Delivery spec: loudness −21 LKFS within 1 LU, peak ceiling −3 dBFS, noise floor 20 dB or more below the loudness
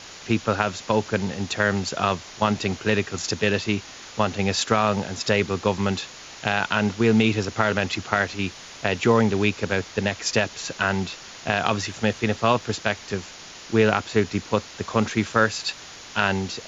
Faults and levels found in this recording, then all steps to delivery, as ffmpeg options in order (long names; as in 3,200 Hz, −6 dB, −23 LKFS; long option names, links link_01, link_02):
background noise floor −42 dBFS; target noise floor −44 dBFS; integrated loudness −23.5 LKFS; sample peak −3.0 dBFS; target loudness −21.0 LKFS
→ -af "afftdn=noise_reduction=6:noise_floor=-42"
-af "volume=2.5dB,alimiter=limit=-3dB:level=0:latency=1"